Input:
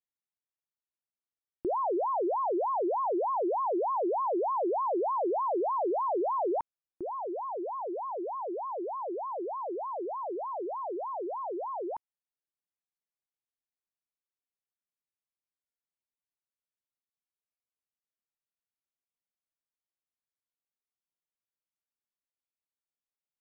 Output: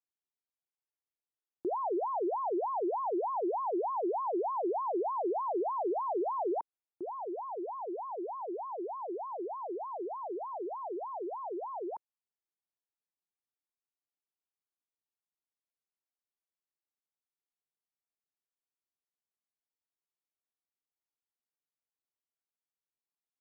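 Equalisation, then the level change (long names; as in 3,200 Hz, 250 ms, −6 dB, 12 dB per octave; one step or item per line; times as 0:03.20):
resonant band-pass 530 Hz, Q 1.2
parametric band 550 Hz −12 dB 0.36 octaves
+2.0 dB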